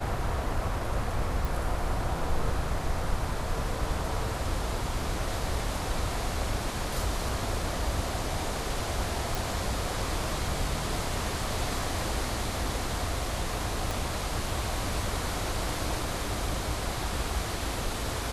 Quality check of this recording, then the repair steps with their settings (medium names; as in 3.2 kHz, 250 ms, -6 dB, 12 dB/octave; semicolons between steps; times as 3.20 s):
1.45 s: pop
9.35 s: pop
13.91 s: pop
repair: de-click